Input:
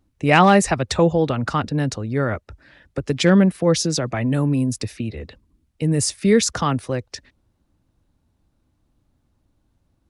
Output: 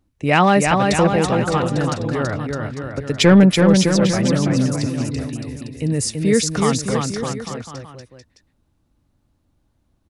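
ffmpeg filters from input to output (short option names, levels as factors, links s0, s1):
-filter_complex "[0:a]asettb=1/sr,asplit=3[s0][s1][s2];[s0]atrim=end=3.194[s3];[s1]atrim=start=3.19:end=3.62,asetpts=PTS-STARTPTS,afade=t=in:d=0.004:c=qsin,afade=t=out:st=0.426:d=0.004:c=qsin,acontrast=72[s4];[s2]atrim=start=3.616[s5];[s3][s4]acrossfade=d=0.004:c1=hsin:c2=qsin[s6];[s6][s5]acrossfade=d=0.004:c1=qsin:c2=hsin,aecho=1:1:330|610.5|848.9|1052|1224:0.631|0.398|0.251|0.158|0.1,volume=0.891"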